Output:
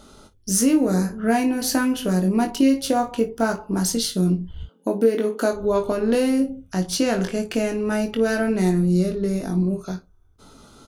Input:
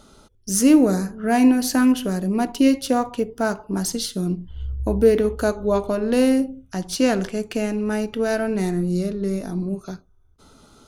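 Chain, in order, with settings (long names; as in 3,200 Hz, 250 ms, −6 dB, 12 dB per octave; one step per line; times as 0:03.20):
downward compressor 5 to 1, threshold −18 dBFS, peak gain reduction 8.5 dB
0:04.63–0:05.53: linear-phase brick-wall high-pass 190 Hz
ambience of single reflections 22 ms −5.5 dB, 55 ms −16 dB
level +1.5 dB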